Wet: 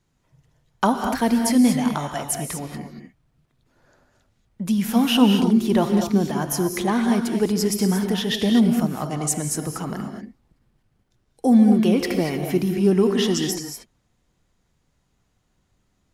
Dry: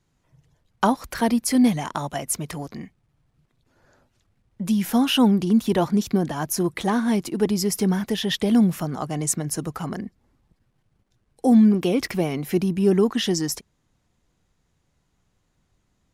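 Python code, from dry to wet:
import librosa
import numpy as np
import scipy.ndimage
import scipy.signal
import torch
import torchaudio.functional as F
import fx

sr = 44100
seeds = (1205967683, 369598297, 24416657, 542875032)

y = fx.rev_gated(x, sr, seeds[0], gate_ms=260, shape='rising', drr_db=4.5)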